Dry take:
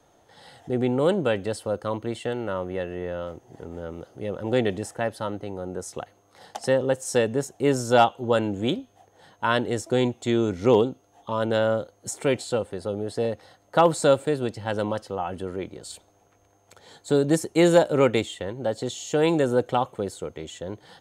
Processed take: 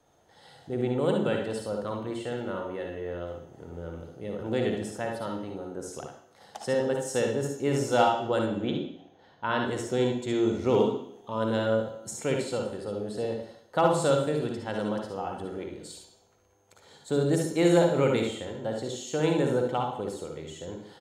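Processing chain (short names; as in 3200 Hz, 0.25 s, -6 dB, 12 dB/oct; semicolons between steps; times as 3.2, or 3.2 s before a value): 8.41–9.61 running mean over 5 samples; early reflections 58 ms -6.5 dB, 72 ms -7 dB; on a send at -7 dB: reverb RT60 0.70 s, pre-delay 41 ms; on the sum: gain -6.5 dB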